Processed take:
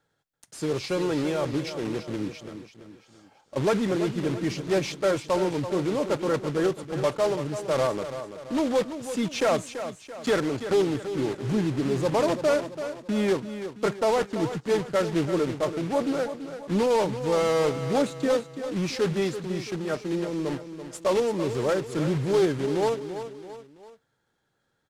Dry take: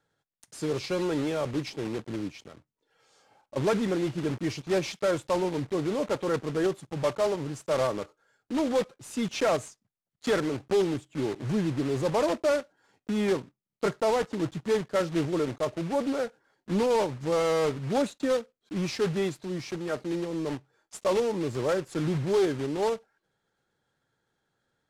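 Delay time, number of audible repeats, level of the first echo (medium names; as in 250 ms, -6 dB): 335 ms, 3, -10.5 dB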